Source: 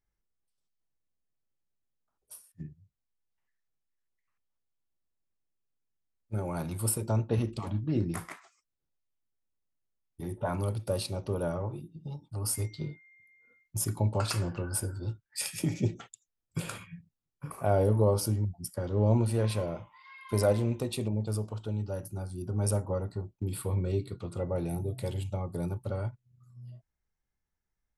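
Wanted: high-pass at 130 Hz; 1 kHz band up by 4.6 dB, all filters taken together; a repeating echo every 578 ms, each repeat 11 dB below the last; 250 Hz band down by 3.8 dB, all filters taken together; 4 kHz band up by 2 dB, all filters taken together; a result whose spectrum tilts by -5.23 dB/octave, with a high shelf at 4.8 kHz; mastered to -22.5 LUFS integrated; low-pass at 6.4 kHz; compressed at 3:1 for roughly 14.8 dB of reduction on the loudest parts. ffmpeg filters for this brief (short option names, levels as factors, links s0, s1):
-af "highpass=130,lowpass=6400,equalizer=f=250:t=o:g=-5,equalizer=f=1000:t=o:g=6.5,equalizer=f=4000:t=o:g=8,highshelf=f=4800:g=-9,acompressor=threshold=0.01:ratio=3,aecho=1:1:578|1156|1734:0.282|0.0789|0.0221,volume=10.6"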